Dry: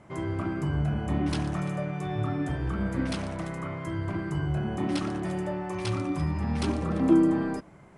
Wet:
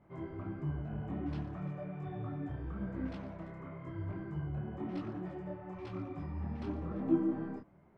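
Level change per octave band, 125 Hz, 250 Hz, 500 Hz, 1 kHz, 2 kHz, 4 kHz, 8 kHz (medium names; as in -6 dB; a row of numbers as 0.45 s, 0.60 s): -10.5 dB, -10.5 dB, -10.5 dB, -12.5 dB, -15.5 dB, -21.0 dB, under -30 dB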